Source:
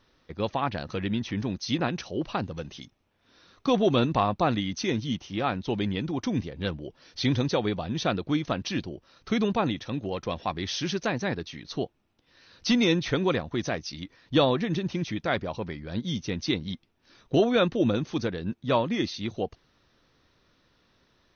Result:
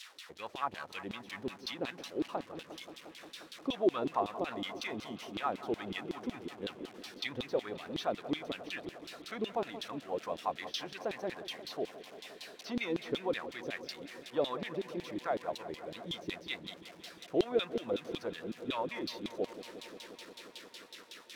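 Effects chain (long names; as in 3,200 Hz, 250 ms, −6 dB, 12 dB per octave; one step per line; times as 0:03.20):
spike at every zero crossing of −27.5 dBFS
in parallel at 0 dB: brickwall limiter −20 dBFS, peak gain reduction 9.5 dB
on the sum: auto-filter band-pass saw down 5.4 Hz 310–3,900 Hz
delay with a low-pass on its return 177 ms, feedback 83%, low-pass 2,300 Hz, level −14.5 dB
level −6 dB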